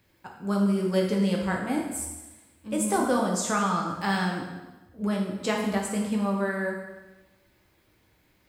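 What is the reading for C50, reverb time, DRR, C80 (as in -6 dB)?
3.5 dB, 1.1 s, -0.5 dB, 6.0 dB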